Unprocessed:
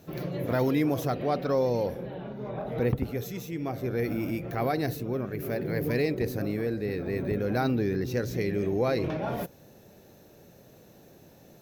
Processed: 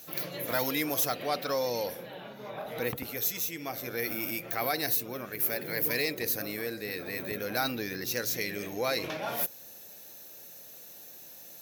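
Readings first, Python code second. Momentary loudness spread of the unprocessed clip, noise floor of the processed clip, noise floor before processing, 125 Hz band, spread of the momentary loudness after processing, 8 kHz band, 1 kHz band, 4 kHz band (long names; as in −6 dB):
9 LU, −49 dBFS, −55 dBFS, −13.5 dB, 17 LU, +12.5 dB, −1.5 dB, +8.5 dB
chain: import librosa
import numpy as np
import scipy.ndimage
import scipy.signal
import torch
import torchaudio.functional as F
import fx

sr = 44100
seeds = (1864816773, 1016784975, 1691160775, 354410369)

y = fx.tilt_eq(x, sr, slope=4.5)
y = fx.notch(y, sr, hz=390.0, q=12.0)
y = 10.0 ** (-14.5 / 20.0) * np.tanh(y / 10.0 ** (-14.5 / 20.0))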